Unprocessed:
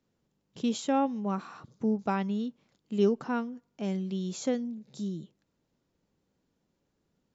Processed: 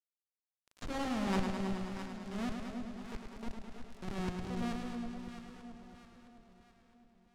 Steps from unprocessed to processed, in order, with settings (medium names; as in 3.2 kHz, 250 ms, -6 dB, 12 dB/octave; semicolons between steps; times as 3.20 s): high-pass 44 Hz 24 dB/octave; treble shelf 6 kHz +6.5 dB; hum notches 60/120/180 Hz; Schmitt trigger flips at -34 dBFS; compressor with a negative ratio -37 dBFS, ratio -0.5; slow attack 799 ms; crackle 150 per s -56 dBFS; bit crusher 8-bit; distance through air 55 m; echo whose repeats swap between lows and highs 331 ms, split 810 Hz, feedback 67%, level -6 dB; modulated delay 105 ms, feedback 75%, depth 55 cents, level -6 dB; trim +6.5 dB